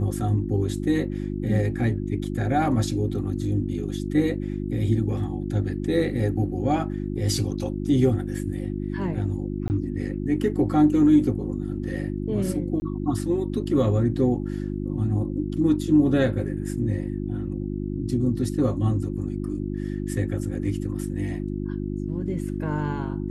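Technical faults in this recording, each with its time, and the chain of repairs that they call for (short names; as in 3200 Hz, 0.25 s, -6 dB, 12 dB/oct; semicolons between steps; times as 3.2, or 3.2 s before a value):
hum 50 Hz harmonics 7 -29 dBFS
9.68–9.7 gap 19 ms
12.8–12.82 gap 20 ms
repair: de-hum 50 Hz, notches 7; interpolate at 9.68, 19 ms; interpolate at 12.8, 20 ms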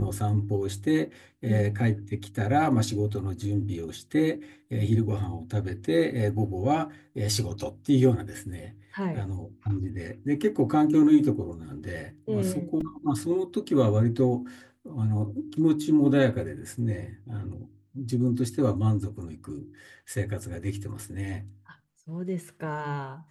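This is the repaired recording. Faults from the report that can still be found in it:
none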